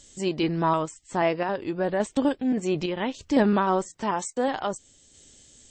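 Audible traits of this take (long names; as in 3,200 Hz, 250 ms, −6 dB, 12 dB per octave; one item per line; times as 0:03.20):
sample-and-hold tremolo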